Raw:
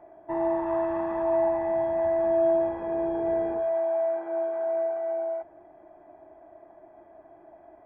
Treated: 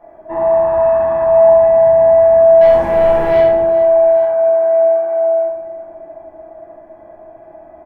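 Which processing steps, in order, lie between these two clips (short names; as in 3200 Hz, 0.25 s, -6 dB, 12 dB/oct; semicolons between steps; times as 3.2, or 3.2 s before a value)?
2.61–3.41 sample leveller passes 2; tapped delay 73/208/418/846 ms -6/-17/-15.5/-18.5 dB; shoebox room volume 400 m³, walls furnished, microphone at 5.7 m; gain +1 dB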